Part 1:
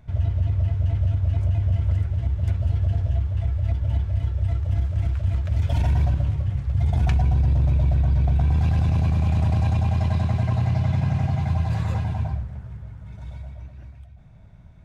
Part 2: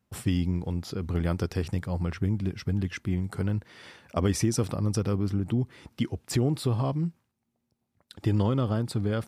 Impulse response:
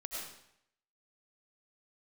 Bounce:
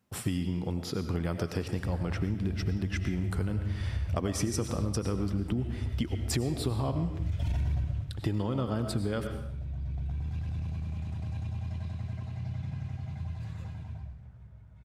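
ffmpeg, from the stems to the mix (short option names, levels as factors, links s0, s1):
-filter_complex "[0:a]adynamicequalizer=threshold=0.00447:dfrequency=750:dqfactor=0.87:tfrequency=750:tqfactor=0.87:attack=5:release=100:ratio=0.375:range=3.5:mode=cutabove:tftype=bell,adelay=1700,volume=0.531,afade=t=out:st=7.77:d=0.29:silence=0.281838,asplit=2[s0][s1];[s1]volume=0.473[s2];[1:a]highpass=f=91:p=1,volume=0.891,asplit=3[s3][s4][s5];[s4]volume=0.668[s6];[s5]apad=whole_len=729426[s7];[s0][s7]sidechaincompress=threshold=0.0158:ratio=8:attack=16:release=934[s8];[2:a]atrim=start_sample=2205[s9];[s2][s6]amix=inputs=2:normalize=0[s10];[s10][s9]afir=irnorm=-1:irlink=0[s11];[s8][s3][s11]amix=inputs=3:normalize=0,acompressor=threshold=0.0501:ratio=6"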